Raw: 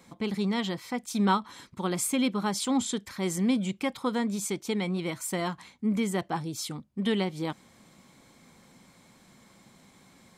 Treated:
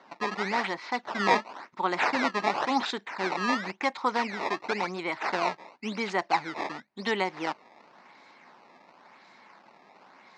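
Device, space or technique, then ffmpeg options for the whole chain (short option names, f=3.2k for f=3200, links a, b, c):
circuit-bent sampling toy: -af "acrusher=samples=17:mix=1:aa=0.000001:lfo=1:lforange=27.2:lforate=0.94,highpass=490,equalizer=f=500:t=q:w=4:g=-5,equalizer=f=900:t=q:w=4:g=5,equalizer=f=2k:t=q:w=4:g=3,equalizer=f=3.2k:t=q:w=4:g=-8,lowpass=f=4.8k:w=0.5412,lowpass=f=4.8k:w=1.3066,volume=6dB"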